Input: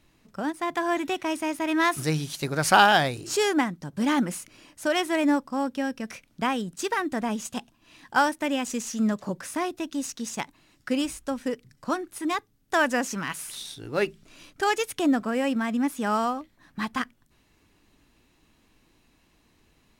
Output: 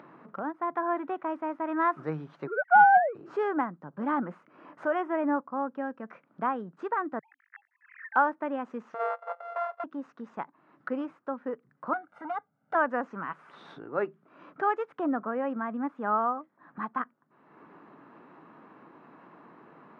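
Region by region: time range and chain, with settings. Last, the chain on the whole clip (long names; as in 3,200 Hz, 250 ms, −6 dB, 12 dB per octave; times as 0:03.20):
0:02.47–0:03.15: three sine waves on the formant tracks + low-pass filter 1,800 Hz 24 dB per octave + leveller curve on the samples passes 1
0:04.86–0:05.41: mu-law and A-law mismatch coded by mu + Butterworth band-reject 4,200 Hz, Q 3
0:07.19–0:08.16: three sine waves on the formant tracks + flat-topped band-pass 1,900 Hz, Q 4.8
0:08.94–0:09.84: samples sorted by size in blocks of 64 samples + linear-phase brick-wall high-pass 440 Hz
0:11.93–0:12.75: hard clipping −26.5 dBFS + comb filter 1.4 ms, depth 89%
whole clip: Chebyshev band-pass filter 150–1,300 Hz, order 3; upward compression, threshold −32 dBFS; spectral tilt +3.5 dB per octave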